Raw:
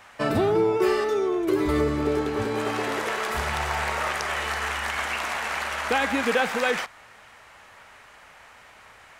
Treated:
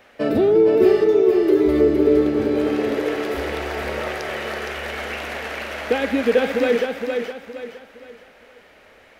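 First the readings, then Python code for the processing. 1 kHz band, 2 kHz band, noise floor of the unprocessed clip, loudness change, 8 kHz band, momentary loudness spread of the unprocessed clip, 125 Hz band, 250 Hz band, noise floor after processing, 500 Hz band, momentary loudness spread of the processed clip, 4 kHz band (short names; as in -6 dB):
-3.5 dB, -1.5 dB, -50 dBFS, +5.5 dB, -6.0 dB, 5 LU, -0.5 dB, +7.5 dB, -50 dBFS, +8.5 dB, 13 LU, -1.0 dB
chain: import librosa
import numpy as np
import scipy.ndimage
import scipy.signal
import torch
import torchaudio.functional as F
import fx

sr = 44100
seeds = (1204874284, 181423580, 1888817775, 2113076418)

p1 = fx.graphic_eq_10(x, sr, hz=(125, 250, 500, 1000, 8000), db=(-6, 6, 9, -10, -10))
y = p1 + fx.echo_feedback(p1, sr, ms=465, feedback_pct=35, wet_db=-5, dry=0)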